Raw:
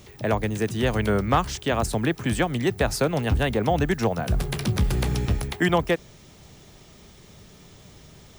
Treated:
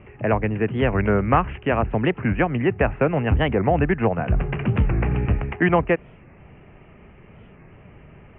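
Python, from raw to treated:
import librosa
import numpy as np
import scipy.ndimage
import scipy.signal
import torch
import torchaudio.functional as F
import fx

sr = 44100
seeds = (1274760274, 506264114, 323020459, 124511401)

y = scipy.signal.sosfilt(scipy.signal.butter(16, 2800.0, 'lowpass', fs=sr, output='sos'), x)
y = fx.record_warp(y, sr, rpm=45.0, depth_cents=160.0)
y = y * librosa.db_to_amplitude(3.0)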